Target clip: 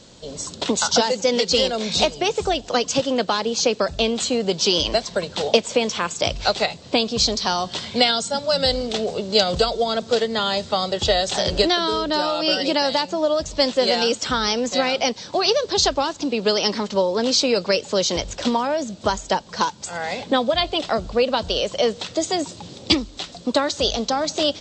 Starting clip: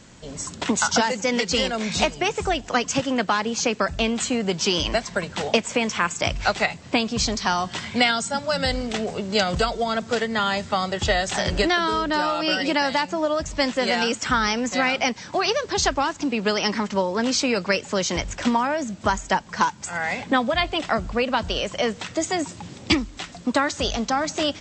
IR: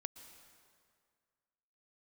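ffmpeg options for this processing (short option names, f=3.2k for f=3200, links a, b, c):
-af "equalizer=f=500:t=o:w=1:g=8,equalizer=f=2k:t=o:w=1:g=-6,equalizer=f=4k:t=o:w=1:g=11,volume=-2dB"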